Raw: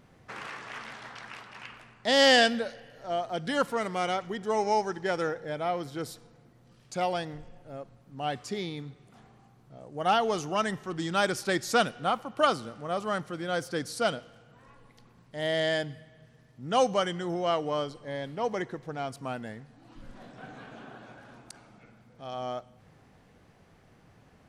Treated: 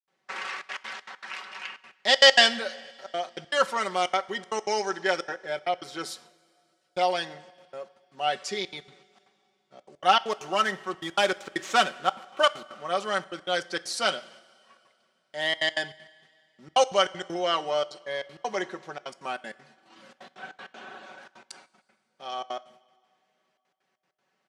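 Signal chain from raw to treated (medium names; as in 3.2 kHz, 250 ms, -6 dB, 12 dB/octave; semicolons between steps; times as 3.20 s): 10.24–12.84 s: median filter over 9 samples; gate -53 dBFS, range -17 dB; high-pass 250 Hz 12 dB/octave; tilt EQ +3 dB/octave; comb 5.3 ms, depth 68%; trance gate ".xxxxxxx.x.xx.x" 196 bpm -60 dB; distance through air 78 m; two-slope reverb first 0.42 s, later 2.7 s, from -15 dB, DRR 15.5 dB; trim +3 dB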